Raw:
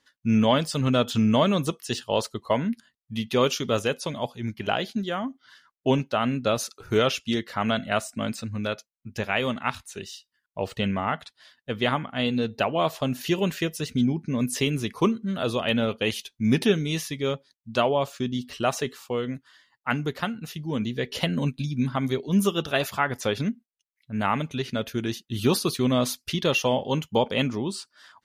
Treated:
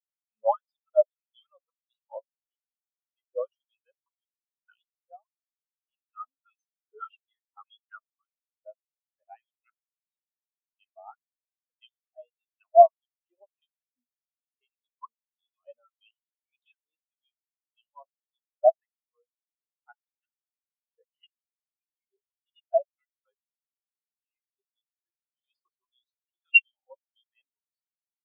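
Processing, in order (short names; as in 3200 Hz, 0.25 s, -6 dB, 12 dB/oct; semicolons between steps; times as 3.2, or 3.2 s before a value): LFO high-pass sine 1.7 Hz 650–3400 Hz; spectral expander 4:1; gain +1.5 dB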